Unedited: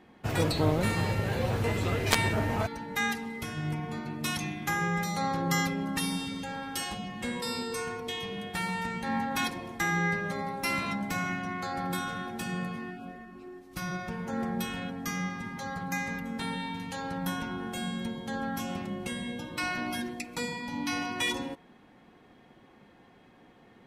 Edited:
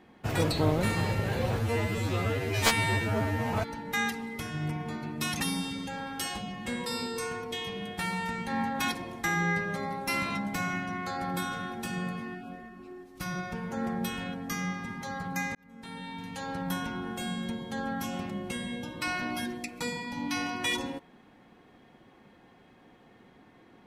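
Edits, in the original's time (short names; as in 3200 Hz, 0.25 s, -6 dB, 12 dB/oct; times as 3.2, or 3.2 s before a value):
1.59–2.56 stretch 2×
4.43–5.96 cut
16.11–17.07 fade in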